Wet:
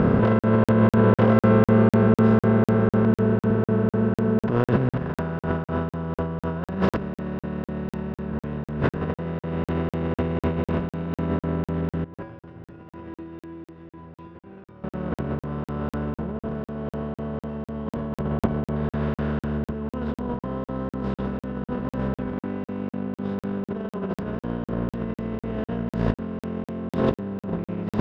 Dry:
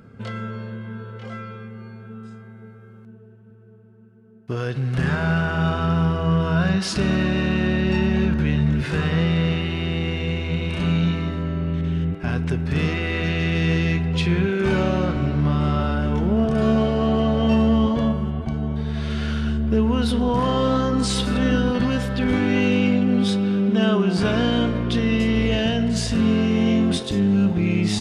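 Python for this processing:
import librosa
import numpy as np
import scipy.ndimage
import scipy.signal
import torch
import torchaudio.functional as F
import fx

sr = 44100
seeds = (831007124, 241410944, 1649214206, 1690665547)

y = fx.bin_compress(x, sr, power=0.4)
y = scipy.signal.sosfilt(scipy.signal.butter(2, 1100.0, 'lowpass', fs=sr, output='sos'), y)
y = fx.over_compress(y, sr, threshold_db=-22.0, ratio=-0.5)
y = fx.comb_fb(y, sr, f0_hz=110.0, decay_s=0.66, harmonics='odd', damping=0.0, mix_pct=90, at=(12.04, 14.84))
y = fx.buffer_crackle(y, sr, first_s=0.39, period_s=0.25, block=2048, kind='zero')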